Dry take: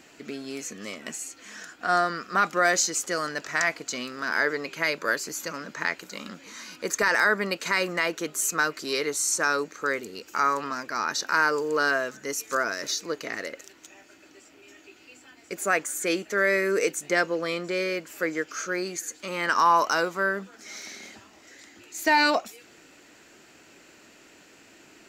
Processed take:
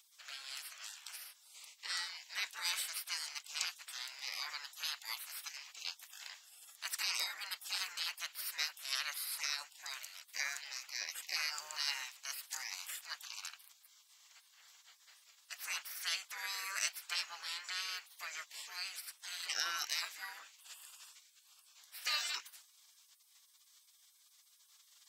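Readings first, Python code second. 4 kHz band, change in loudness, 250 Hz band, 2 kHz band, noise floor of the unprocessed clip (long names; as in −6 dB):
−4.0 dB, −14.0 dB, below −40 dB, −17.0 dB, −54 dBFS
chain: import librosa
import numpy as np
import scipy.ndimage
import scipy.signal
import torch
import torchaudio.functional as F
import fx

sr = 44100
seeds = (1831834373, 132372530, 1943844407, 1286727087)

y = fx.spec_gate(x, sr, threshold_db=-20, keep='weak')
y = scipy.signal.sosfilt(scipy.signal.butter(2, 1300.0, 'highpass', fs=sr, output='sos'), y)
y = F.gain(torch.from_numpy(y), 1.0).numpy()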